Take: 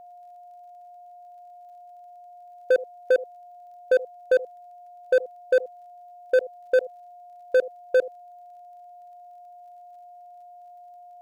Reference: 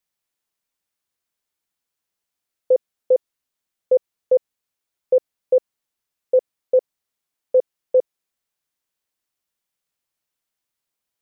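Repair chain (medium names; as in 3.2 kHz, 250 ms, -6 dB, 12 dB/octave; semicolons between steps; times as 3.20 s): clip repair -14.5 dBFS; de-click; band-stop 710 Hz, Q 30; inverse comb 78 ms -21 dB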